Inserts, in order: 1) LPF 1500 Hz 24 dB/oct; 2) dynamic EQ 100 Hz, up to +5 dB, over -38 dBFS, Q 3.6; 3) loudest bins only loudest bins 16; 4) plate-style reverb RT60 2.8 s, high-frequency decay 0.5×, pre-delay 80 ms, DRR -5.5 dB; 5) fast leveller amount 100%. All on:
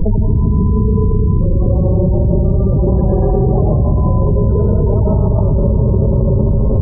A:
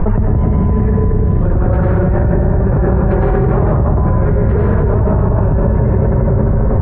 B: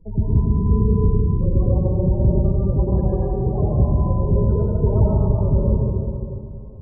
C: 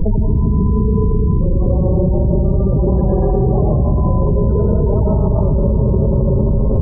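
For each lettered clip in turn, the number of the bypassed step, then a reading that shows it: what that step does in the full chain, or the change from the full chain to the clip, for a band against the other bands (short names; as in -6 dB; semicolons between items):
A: 3, 1 kHz band +5.0 dB; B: 5, crest factor change +2.5 dB; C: 2, 125 Hz band -1.5 dB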